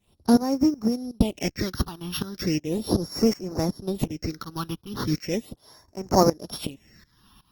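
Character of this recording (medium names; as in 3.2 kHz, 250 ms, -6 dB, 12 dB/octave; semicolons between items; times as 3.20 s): a buzz of ramps at a fixed pitch in blocks of 8 samples; tremolo saw up 2.7 Hz, depth 90%; phasing stages 6, 0.37 Hz, lowest notch 540–3400 Hz; Opus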